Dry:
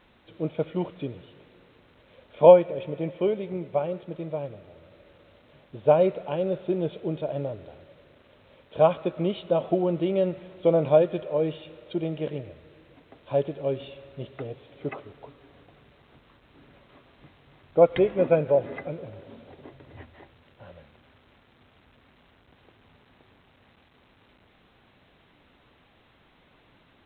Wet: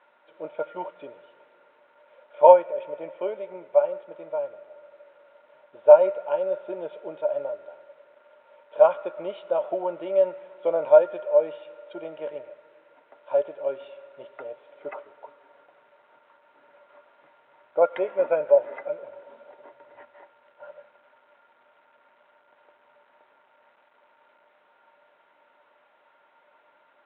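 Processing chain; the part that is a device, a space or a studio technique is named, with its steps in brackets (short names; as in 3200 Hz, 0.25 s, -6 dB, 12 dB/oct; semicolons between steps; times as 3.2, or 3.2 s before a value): tin-can telephone (BPF 640–2000 Hz; small resonant body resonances 590/920/1400 Hz, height 15 dB, ringing for 0.1 s)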